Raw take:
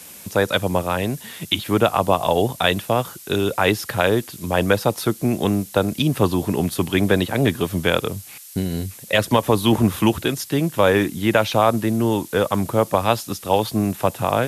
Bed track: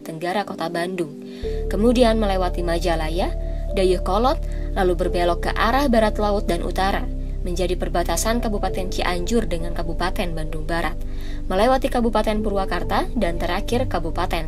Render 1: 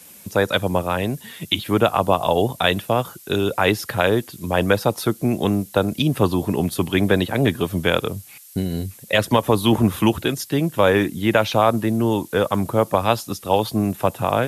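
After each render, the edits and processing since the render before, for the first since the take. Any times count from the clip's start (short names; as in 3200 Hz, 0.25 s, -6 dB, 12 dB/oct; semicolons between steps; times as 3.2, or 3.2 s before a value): denoiser 6 dB, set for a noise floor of -41 dBFS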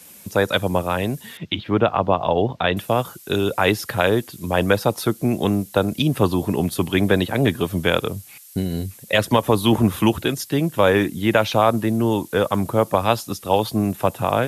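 1.37–2.77 air absorption 230 m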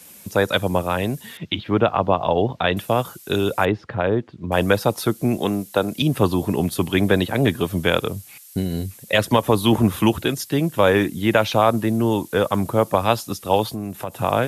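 3.65–4.52 tape spacing loss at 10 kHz 39 dB; 5.37–6.02 HPF 210 Hz 6 dB/oct; 13.64–14.17 compressor 3:1, threshold -26 dBFS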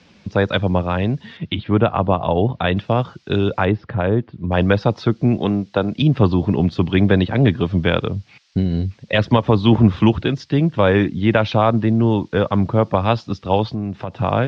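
steep low-pass 5300 Hz 36 dB/oct; tone controls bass +7 dB, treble -4 dB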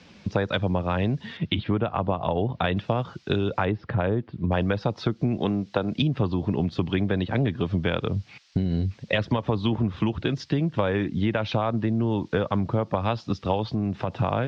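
compressor 10:1, threshold -20 dBFS, peak gain reduction 14 dB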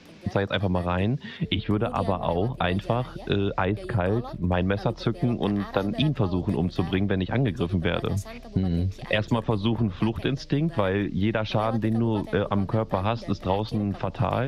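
add bed track -20 dB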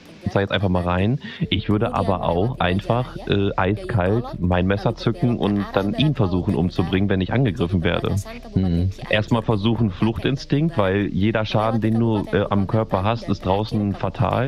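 gain +5 dB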